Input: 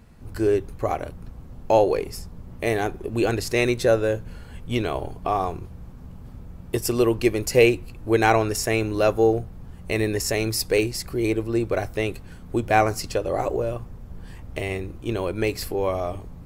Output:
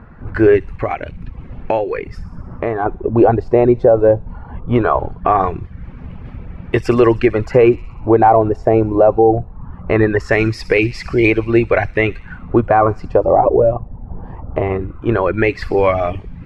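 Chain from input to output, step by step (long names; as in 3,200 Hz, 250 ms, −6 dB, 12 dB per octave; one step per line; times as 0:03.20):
reverb reduction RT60 0.62 s
0:00.69–0:02.86: downward compressor 2.5 to 1, threshold −31 dBFS, peak gain reduction 12.5 dB
auto-filter low-pass sine 0.2 Hz 780–2,400 Hz
delay with a high-pass on its return 62 ms, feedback 69%, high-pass 5,200 Hz, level −11 dB
boost into a limiter +12 dB
level −1 dB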